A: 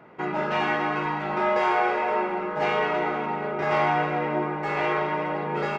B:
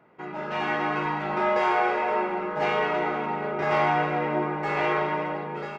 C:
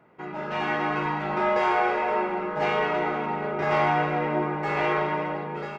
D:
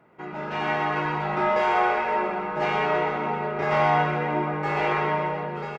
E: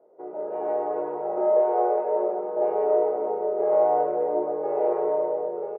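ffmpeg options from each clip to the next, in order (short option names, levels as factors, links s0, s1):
-af "dynaudnorm=f=140:g=9:m=2.99,volume=0.376"
-af "lowshelf=f=110:g=5.5"
-af "aecho=1:1:125:0.531"
-af "asuperpass=centerf=510:order=4:qfactor=1.9,volume=2.11"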